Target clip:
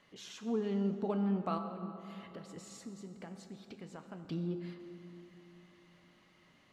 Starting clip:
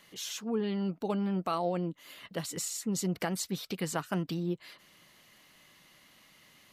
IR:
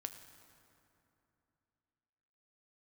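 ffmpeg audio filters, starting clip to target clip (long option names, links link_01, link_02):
-filter_complex "[0:a]lowpass=7800,highshelf=frequency=2600:gain=-11,asettb=1/sr,asplit=3[link_01][link_02][link_03];[link_01]atrim=end=1.584[link_04];[link_02]atrim=start=1.58:end=4.25,asetpts=PTS-STARTPTS,afade=type=in:duration=0.004:curve=qsin,afade=type=out:start_time=2.666:duration=0.004:curve=qsin,acompressor=threshold=-43dB:ratio=6[link_05];[link_03]atrim=start=4.246[link_06];[link_04][link_05]acrossfade=duration=0.004:curve1=hsin:curve2=qsin[link_07];[link_07][link_06]acrossfade=duration=0.004:curve1=qsin:curve2=hsin[link_08];[1:a]atrim=start_sample=2205,asetrate=37044,aresample=44100[link_09];[link_08][link_09]afir=irnorm=-1:irlink=0"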